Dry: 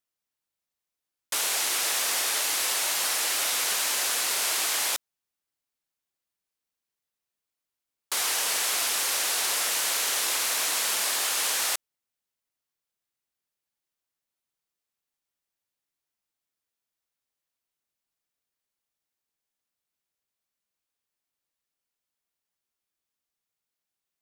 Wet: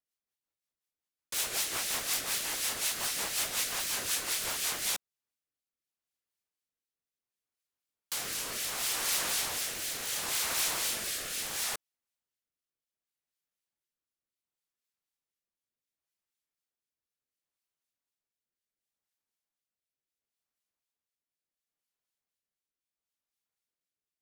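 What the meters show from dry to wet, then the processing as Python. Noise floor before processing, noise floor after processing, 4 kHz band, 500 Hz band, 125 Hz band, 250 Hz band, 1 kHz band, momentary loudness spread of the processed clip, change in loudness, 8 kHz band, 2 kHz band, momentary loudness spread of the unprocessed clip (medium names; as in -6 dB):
under -85 dBFS, under -85 dBFS, -7.0 dB, -5.5 dB, no reading, -0.5 dB, -8.0 dB, 5 LU, -6.5 dB, -7.0 dB, -7.0 dB, 2 LU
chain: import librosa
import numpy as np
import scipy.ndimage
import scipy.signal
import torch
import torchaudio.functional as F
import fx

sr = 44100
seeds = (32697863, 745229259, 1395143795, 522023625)

y = (np.mod(10.0 ** (19.0 / 20.0) * x + 1.0, 2.0) - 1.0) / 10.0 ** (19.0 / 20.0)
y = fx.rotary_switch(y, sr, hz=5.5, then_hz=0.7, switch_at_s=4.57)
y = fx.harmonic_tremolo(y, sr, hz=4.0, depth_pct=50, crossover_hz=1900.0)
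y = F.gain(torch.from_numpy(y), -1.0).numpy()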